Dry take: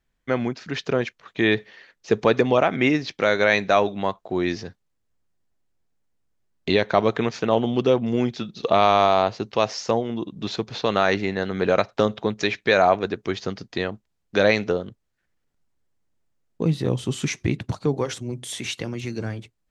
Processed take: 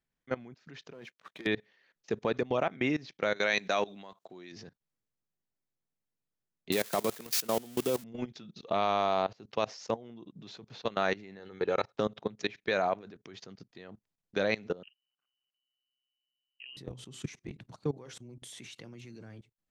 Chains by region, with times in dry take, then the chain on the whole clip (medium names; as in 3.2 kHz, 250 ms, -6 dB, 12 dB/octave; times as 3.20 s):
0.93–1.47 s: high-pass 140 Hz + compression 10:1, threshold -22 dBFS + waveshaping leveller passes 2
3.36–4.52 s: high-pass 140 Hz + treble shelf 2.5 kHz +11 dB
6.72–8.04 s: zero-crossing glitches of -12.5 dBFS + high-pass 130 Hz
11.39–11.95 s: high-pass 41 Hz + comb 2.3 ms, depth 52%
14.83–16.77 s: AM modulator 130 Hz, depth 70% + frequency inversion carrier 3 kHz
whole clip: resonant low shelf 100 Hz -6.5 dB, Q 1.5; level held to a coarse grid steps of 20 dB; trim -8 dB